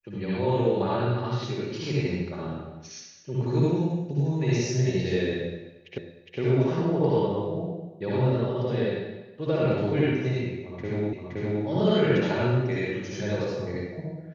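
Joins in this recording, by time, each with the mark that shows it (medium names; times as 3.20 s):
5.98 s: repeat of the last 0.41 s
11.13 s: repeat of the last 0.52 s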